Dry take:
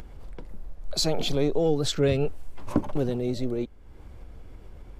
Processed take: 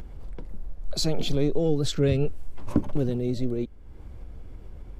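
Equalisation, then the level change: dynamic EQ 820 Hz, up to -5 dB, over -40 dBFS, Q 1.2; low shelf 390 Hz +6 dB; -2.5 dB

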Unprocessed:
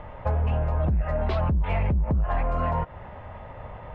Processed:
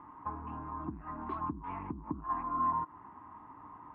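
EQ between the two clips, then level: double band-pass 560 Hz, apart 1.8 oct; air absorption 130 m; +2.5 dB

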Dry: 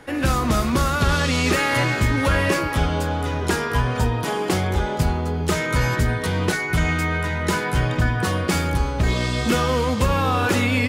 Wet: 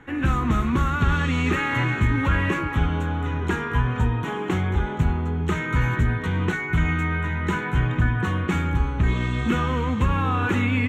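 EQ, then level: running mean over 9 samples; bell 590 Hz -13 dB 0.74 oct; 0.0 dB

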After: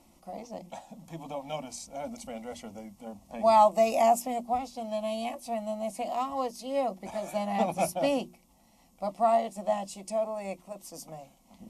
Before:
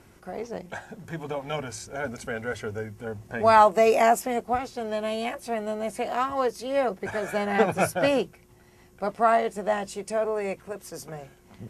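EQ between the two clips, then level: notches 60/120/180/240/300/360 Hz; fixed phaser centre 420 Hz, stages 6; -2.0 dB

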